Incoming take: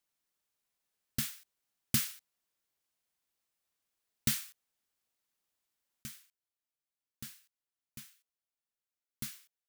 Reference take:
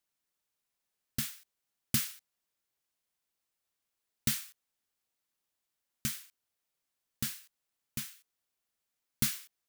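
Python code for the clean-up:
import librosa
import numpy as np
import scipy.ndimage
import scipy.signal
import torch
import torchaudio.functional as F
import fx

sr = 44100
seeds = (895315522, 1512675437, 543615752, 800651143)

y = fx.gain(x, sr, db=fx.steps((0.0, 0.0), (6.03, 11.0)))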